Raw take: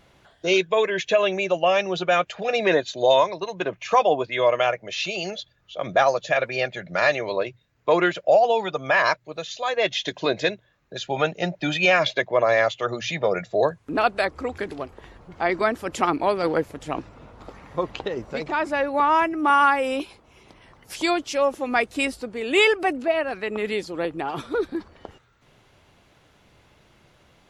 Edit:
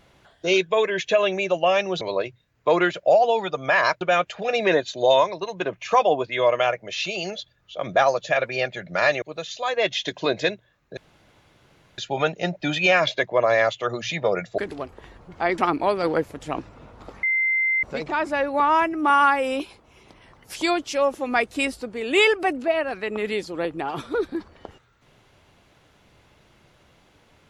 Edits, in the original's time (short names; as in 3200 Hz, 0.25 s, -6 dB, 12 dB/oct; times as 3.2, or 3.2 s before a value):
7.22–9.22 move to 2.01
10.97 insert room tone 1.01 s
13.57–14.58 cut
15.58–15.98 cut
17.63–18.23 bleep 2080 Hz -18.5 dBFS